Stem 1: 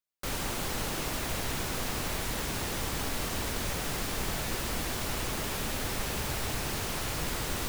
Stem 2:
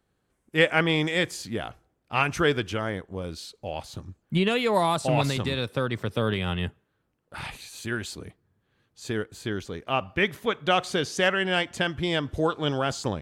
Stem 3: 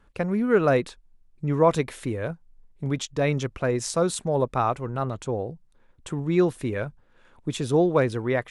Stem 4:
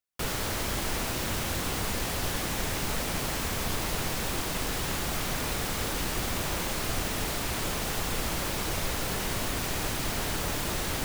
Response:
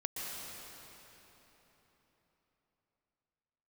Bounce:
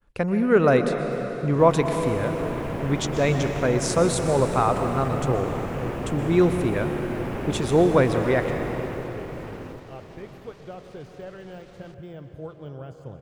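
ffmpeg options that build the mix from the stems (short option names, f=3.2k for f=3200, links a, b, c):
-filter_complex "[0:a]afwtdn=0.0126,equalizer=f=310:w=0.33:g=11.5,dynaudnorm=f=230:g=5:m=4.5dB,adelay=1350,volume=-9dB,asplit=2[a][b];[b]volume=-5dB[c];[1:a]deesser=0.95,equalizer=f=125:t=o:w=1:g=10,equalizer=f=250:t=o:w=1:g=-4,equalizer=f=500:t=o:w=1:g=5,equalizer=f=1k:t=o:w=1:g=-4,equalizer=f=2k:t=o:w=1:g=-5,equalizer=f=4k:t=o:w=1:g=-10,equalizer=f=8k:t=o:w=1:g=-7,volume=-18dB,asplit=2[d][e];[e]volume=-5.5dB[f];[2:a]agate=range=-33dB:threshold=-53dB:ratio=3:detection=peak,volume=-1.5dB,asplit=2[g][h];[h]volume=-3.5dB[i];[3:a]lowpass=4.9k,alimiter=level_in=4dB:limit=-24dB:level=0:latency=1:release=24,volume=-4dB,adelay=900,volume=-18dB,asplit=2[j][k];[k]volume=-15.5dB[l];[4:a]atrim=start_sample=2205[m];[f][i]amix=inputs=2:normalize=0[n];[n][m]afir=irnorm=-1:irlink=0[o];[c][l]amix=inputs=2:normalize=0,aecho=0:1:760|1520|2280|3040|3800:1|0.32|0.102|0.0328|0.0105[p];[a][d][g][j][o][p]amix=inputs=6:normalize=0"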